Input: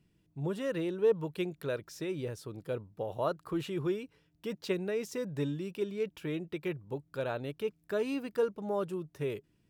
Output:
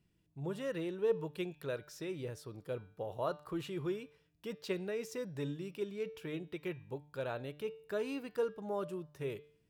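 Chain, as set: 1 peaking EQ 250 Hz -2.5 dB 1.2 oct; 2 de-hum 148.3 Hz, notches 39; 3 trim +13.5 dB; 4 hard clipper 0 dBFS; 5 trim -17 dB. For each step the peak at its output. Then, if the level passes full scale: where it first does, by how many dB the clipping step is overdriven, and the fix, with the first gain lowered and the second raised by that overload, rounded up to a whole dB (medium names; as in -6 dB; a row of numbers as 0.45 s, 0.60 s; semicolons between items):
-19.5 dBFS, -18.0 dBFS, -4.5 dBFS, -4.5 dBFS, -21.5 dBFS; nothing clips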